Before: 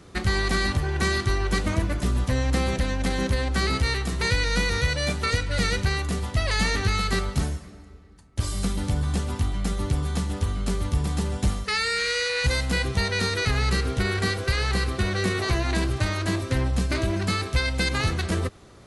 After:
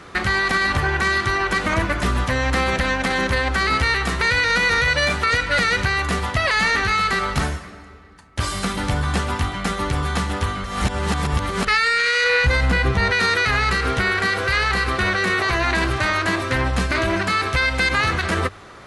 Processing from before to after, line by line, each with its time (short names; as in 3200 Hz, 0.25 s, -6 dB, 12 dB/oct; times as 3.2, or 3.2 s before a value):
10.64–11.67 reverse
12.24–13.11 tilt -2 dB/oct
whole clip: bell 1500 Hz +13 dB 2.7 oct; notches 50/100 Hz; maximiser +10.5 dB; gain -8.5 dB